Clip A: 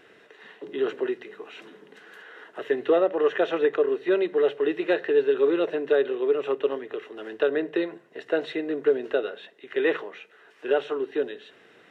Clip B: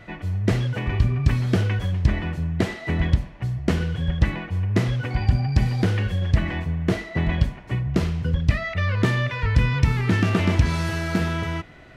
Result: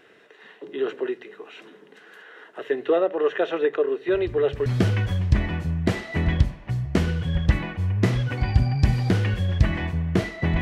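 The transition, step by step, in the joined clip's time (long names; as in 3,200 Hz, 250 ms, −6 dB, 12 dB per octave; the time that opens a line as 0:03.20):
clip A
0:04.08: mix in clip B from 0:00.81 0.58 s −16.5 dB
0:04.66: continue with clip B from 0:01.39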